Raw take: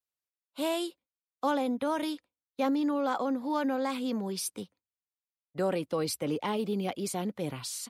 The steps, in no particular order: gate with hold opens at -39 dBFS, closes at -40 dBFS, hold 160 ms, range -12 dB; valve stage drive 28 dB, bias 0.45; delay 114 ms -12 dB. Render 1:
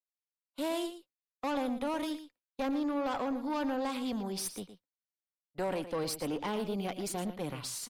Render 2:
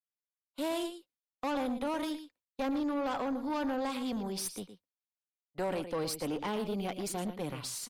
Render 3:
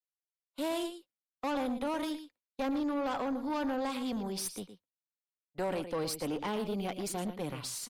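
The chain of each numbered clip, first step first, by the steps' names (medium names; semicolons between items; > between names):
valve stage > delay > gate with hold; delay > gate with hold > valve stage; delay > valve stage > gate with hold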